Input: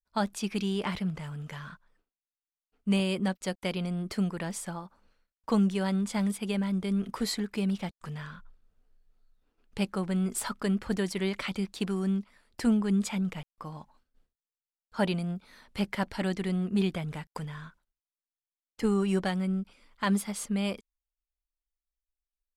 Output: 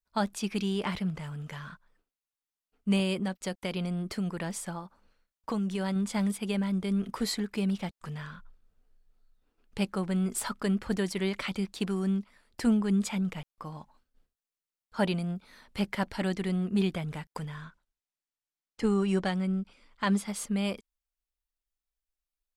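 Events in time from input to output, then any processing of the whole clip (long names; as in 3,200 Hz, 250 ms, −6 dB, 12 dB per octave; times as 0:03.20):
0:03.13–0:05.96: downward compressor, threshold −27 dBFS
0:17.64–0:20.28: low-pass filter 8,700 Hz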